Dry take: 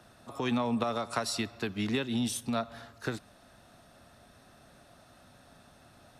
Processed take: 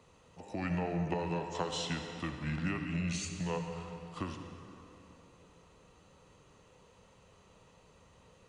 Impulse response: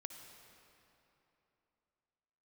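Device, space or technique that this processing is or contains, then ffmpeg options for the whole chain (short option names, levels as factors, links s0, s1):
slowed and reverbed: -filter_complex "[0:a]asetrate=32193,aresample=44100[s0];[1:a]atrim=start_sample=2205[s1];[s0][s1]afir=irnorm=-1:irlink=0"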